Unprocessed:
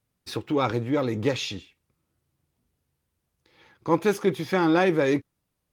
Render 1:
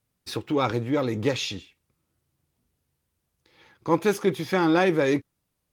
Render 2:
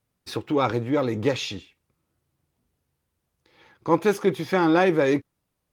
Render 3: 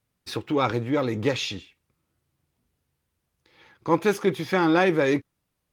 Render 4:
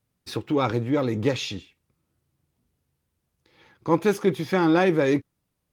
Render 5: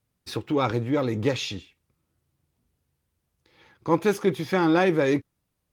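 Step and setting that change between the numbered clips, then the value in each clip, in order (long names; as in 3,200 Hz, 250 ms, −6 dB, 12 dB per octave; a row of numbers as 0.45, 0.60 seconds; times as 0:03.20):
parametric band, centre frequency: 13,000, 750, 2,000, 160, 63 Hertz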